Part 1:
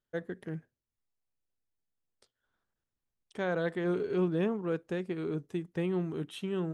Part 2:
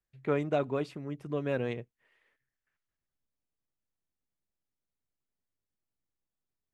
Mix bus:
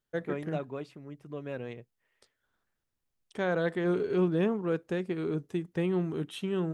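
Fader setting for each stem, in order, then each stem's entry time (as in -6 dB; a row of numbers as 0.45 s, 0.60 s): +2.5 dB, -6.5 dB; 0.00 s, 0.00 s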